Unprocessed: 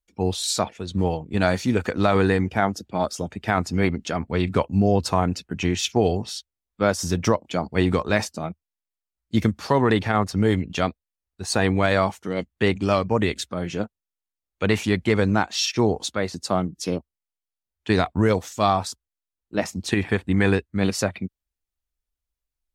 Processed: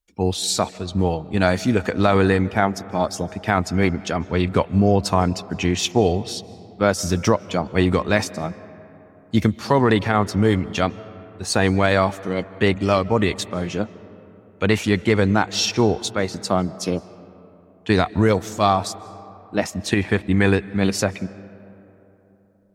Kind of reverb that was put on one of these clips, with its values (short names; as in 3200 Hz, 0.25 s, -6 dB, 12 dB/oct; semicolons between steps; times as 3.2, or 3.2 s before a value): digital reverb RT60 3.5 s, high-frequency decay 0.4×, pre-delay 0.115 s, DRR 18.5 dB; gain +2.5 dB